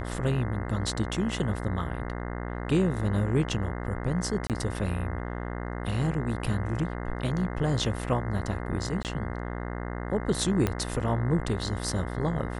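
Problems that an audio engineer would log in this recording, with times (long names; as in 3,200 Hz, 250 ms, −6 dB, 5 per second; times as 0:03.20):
mains buzz 60 Hz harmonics 35 −34 dBFS
0:04.47–0:04.50: drop-out 28 ms
0:09.03–0:09.05: drop-out 18 ms
0:10.67: click −12 dBFS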